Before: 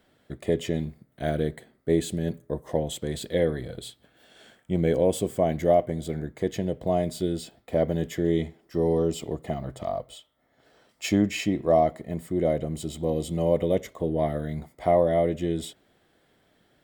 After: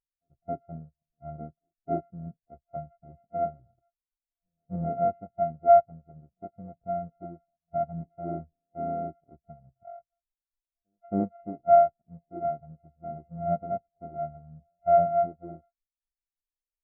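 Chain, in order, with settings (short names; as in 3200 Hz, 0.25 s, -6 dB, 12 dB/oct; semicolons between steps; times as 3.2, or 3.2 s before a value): sample sorter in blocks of 64 samples; LPF 1600 Hz 12 dB/oct; low shelf 62 Hz +6 dB; added noise brown -54 dBFS; on a send: reverse echo 0.271 s -22 dB; on the sum: spectral expander 2.5:1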